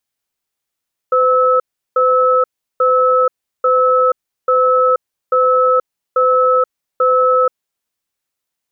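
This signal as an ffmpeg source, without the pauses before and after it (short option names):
-f lavfi -i "aevalsrc='0.251*(sin(2*PI*509*t)+sin(2*PI*1300*t))*clip(min(mod(t,0.84),0.48-mod(t,0.84))/0.005,0,1)':d=6.38:s=44100"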